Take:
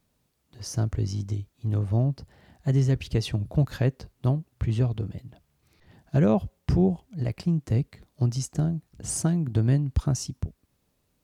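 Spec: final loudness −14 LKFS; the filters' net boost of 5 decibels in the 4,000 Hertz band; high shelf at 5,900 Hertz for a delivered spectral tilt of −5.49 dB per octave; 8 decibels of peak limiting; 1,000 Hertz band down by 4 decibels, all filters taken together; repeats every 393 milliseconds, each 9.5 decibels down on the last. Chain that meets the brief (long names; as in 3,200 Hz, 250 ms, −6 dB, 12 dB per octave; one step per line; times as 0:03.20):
parametric band 1,000 Hz −6.5 dB
parametric band 4,000 Hz +3 dB
high-shelf EQ 5,900 Hz +8.5 dB
brickwall limiter −20.5 dBFS
repeating echo 393 ms, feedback 33%, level −9.5 dB
level +16 dB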